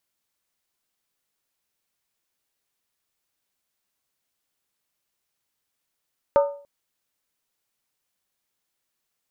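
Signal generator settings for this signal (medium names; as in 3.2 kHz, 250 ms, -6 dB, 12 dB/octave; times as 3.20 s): skin hit length 0.29 s, lowest mode 569 Hz, decay 0.45 s, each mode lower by 7 dB, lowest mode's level -11.5 dB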